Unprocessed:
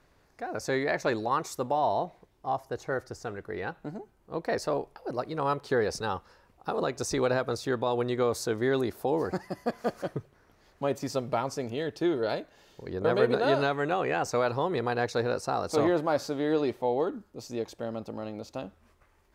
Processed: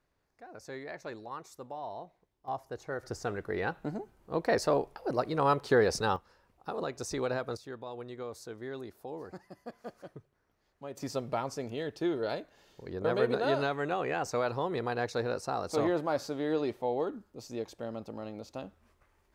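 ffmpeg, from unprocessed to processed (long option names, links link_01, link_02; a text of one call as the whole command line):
ffmpeg -i in.wav -af "asetnsamples=nb_out_samples=441:pad=0,asendcmd='2.48 volume volume -6dB;3.03 volume volume 2dB;6.16 volume volume -6dB;7.57 volume volume -14dB;10.97 volume volume -4dB',volume=-14dB" out.wav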